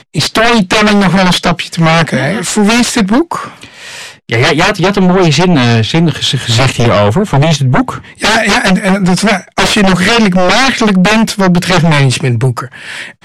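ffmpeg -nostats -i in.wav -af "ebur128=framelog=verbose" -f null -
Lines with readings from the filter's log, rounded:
Integrated loudness:
  I:          -9.1 LUFS
  Threshold: -19.5 LUFS
Loudness range:
  LRA:         2.5 LU
  Threshold: -29.4 LUFS
  LRA low:   -10.8 LUFS
  LRA high:   -8.4 LUFS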